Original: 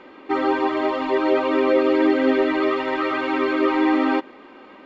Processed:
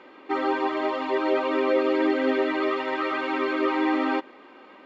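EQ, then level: bass shelf 160 Hz -12 dB; -3.0 dB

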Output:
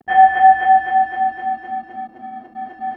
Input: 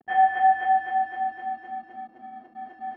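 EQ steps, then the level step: bass shelf 110 Hz +9.5 dB; +9.0 dB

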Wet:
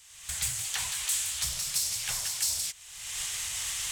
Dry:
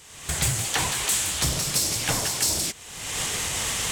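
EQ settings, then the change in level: amplifier tone stack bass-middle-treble 10-0-10; -4.5 dB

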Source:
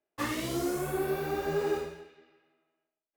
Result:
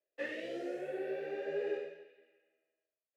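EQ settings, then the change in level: vowel filter e; high-pass 130 Hz 24 dB/octave; treble shelf 9.4 kHz -6 dB; +5.5 dB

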